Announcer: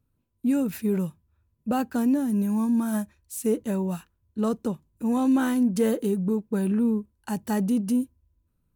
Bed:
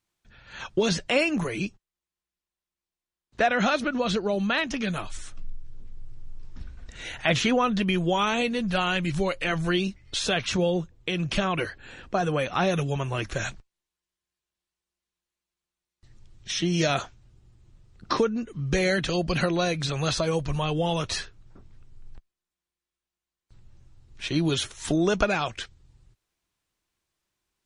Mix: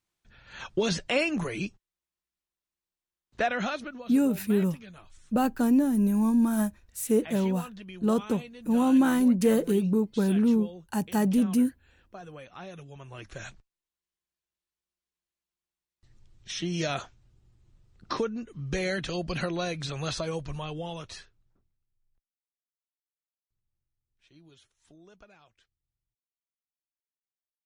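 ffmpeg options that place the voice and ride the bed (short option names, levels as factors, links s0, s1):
-filter_complex "[0:a]adelay=3650,volume=1.06[s0];[1:a]volume=3.16,afade=t=out:st=3.31:d=0.75:silence=0.158489,afade=t=in:st=12.92:d=1.15:silence=0.223872,afade=t=out:st=20.16:d=1.6:silence=0.0501187[s1];[s0][s1]amix=inputs=2:normalize=0"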